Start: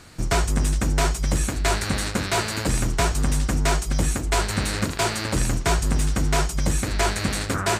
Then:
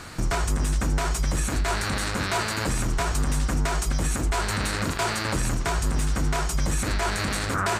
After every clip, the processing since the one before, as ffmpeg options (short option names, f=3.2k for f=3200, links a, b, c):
-af "equalizer=f=1.2k:t=o:w=1.4:g=5,acompressor=threshold=-24dB:ratio=3,alimiter=limit=-21.5dB:level=0:latency=1:release=36,volume=5.5dB"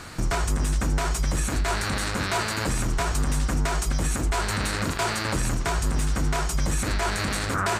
-af anull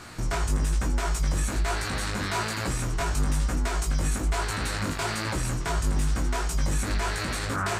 -af "flanger=delay=16.5:depth=3.4:speed=1.1"